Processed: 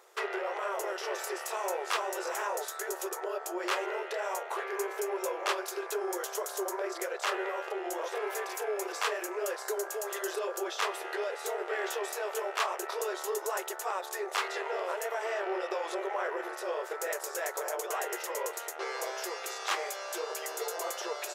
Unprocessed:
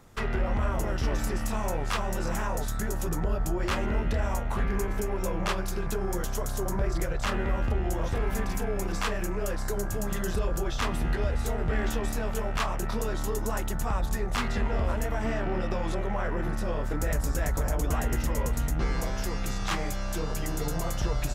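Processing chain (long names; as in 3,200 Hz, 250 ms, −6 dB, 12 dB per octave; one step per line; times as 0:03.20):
linear-phase brick-wall high-pass 350 Hz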